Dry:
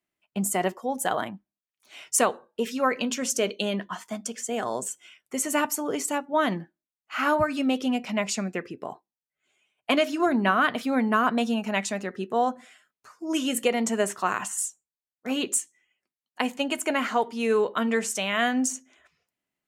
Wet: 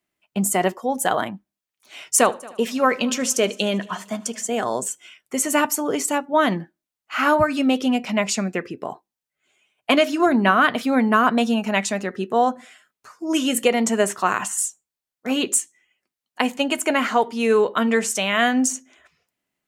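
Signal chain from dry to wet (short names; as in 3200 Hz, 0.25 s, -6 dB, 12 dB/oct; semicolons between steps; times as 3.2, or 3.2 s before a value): 2.17–4.48 multi-head echo 76 ms, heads first and third, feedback 43%, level -23 dB; gain +5.5 dB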